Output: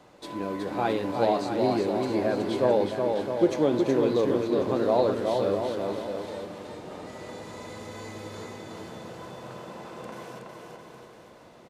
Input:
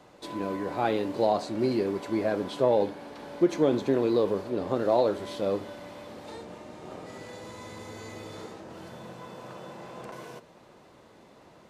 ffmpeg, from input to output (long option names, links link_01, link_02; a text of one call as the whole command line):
ffmpeg -i in.wav -af "aecho=1:1:370|666|902.8|1092|1244:0.631|0.398|0.251|0.158|0.1" out.wav